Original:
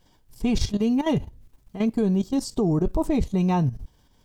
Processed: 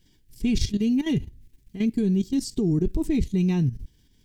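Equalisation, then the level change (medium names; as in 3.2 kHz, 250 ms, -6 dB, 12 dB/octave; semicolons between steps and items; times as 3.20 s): high-order bell 840 Hz -16 dB; 0.0 dB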